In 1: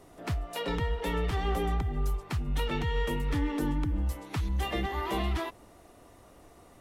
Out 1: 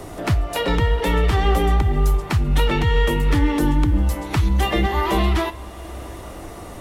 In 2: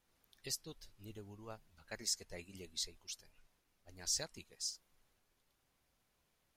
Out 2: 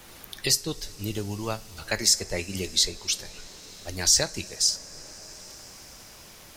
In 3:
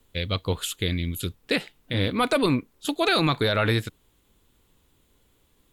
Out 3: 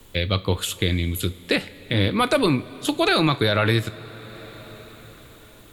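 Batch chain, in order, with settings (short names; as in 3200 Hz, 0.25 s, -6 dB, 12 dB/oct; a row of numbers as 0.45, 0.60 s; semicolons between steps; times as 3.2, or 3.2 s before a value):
two-slope reverb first 0.29 s, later 4.4 s, from -19 dB, DRR 12.5 dB; three-band squash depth 40%; normalise peaks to -6 dBFS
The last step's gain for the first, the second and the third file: +11.0, +19.5, +3.0 dB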